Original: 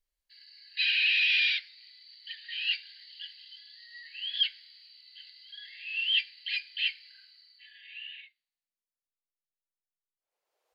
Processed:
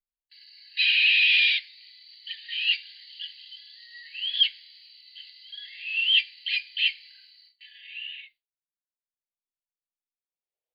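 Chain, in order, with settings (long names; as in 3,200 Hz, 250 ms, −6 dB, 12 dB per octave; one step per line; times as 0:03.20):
phaser with its sweep stopped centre 3,000 Hz, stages 4
noise gate with hold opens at −51 dBFS
level +6 dB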